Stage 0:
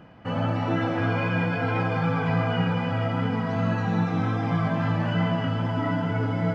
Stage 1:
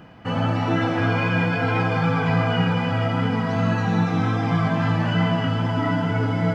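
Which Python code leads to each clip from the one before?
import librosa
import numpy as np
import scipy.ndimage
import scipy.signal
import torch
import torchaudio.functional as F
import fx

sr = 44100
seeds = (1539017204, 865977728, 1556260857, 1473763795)

y = fx.high_shelf(x, sr, hz=3800.0, db=6.5)
y = fx.notch(y, sr, hz=570.0, q=12.0)
y = y * 10.0 ** (3.5 / 20.0)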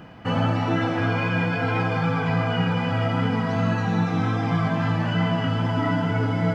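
y = fx.rider(x, sr, range_db=4, speed_s=0.5)
y = y * 10.0 ** (-1.5 / 20.0)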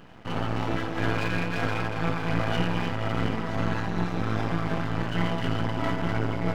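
y = np.maximum(x, 0.0)
y = fx.am_noise(y, sr, seeds[0], hz=5.7, depth_pct=50)
y = y * 10.0 ** (1.5 / 20.0)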